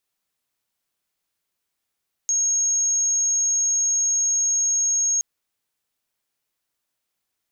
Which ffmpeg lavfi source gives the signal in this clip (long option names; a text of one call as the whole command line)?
ffmpeg -f lavfi -i "sine=frequency=6540:duration=2.92:sample_rate=44100,volume=0.06dB" out.wav